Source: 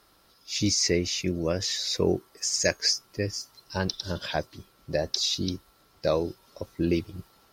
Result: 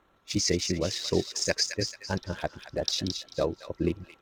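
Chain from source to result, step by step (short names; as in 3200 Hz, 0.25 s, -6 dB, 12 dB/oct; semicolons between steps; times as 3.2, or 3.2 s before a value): Wiener smoothing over 9 samples; thin delay 0.399 s, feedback 34%, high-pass 1400 Hz, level -6.5 dB; granular stretch 0.56×, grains 57 ms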